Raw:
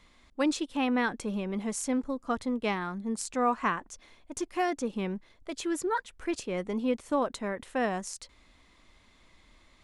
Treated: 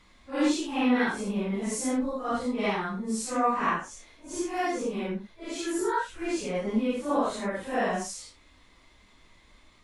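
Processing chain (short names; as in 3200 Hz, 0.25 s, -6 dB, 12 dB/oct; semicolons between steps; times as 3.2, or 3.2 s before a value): phase scrambler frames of 0.2 s; gain +2.5 dB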